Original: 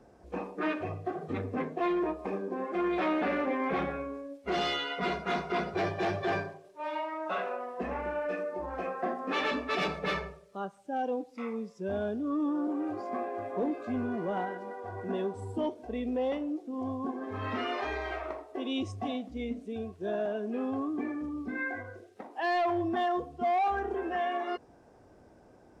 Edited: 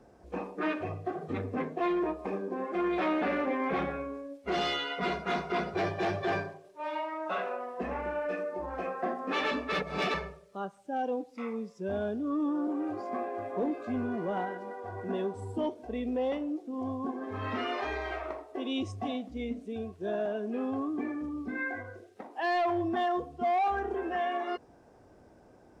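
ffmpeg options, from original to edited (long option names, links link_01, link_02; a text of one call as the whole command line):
ffmpeg -i in.wav -filter_complex "[0:a]asplit=3[link_01][link_02][link_03];[link_01]atrim=end=9.722[link_04];[link_02]atrim=start=9.718:end=10.142,asetpts=PTS-STARTPTS,areverse[link_05];[link_03]atrim=start=10.138[link_06];[link_04][link_05]acrossfade=duration=0.004:curve1=hsin:curve2=hsin[link_07];[link_07][link_06]acrossfade=duration=0.004:curve1=hsin:curve2=hsin" out.wav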